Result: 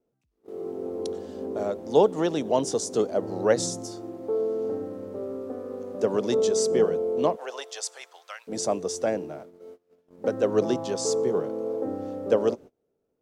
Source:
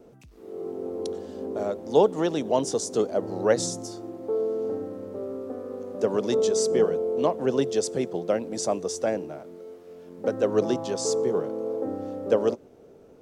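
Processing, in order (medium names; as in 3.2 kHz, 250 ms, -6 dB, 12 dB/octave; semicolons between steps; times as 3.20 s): gate -41 dBFS, range -25 dB; 7.35–8.47 s: high-pass 570 Hz -> 1.3 kHz 24 dB/octave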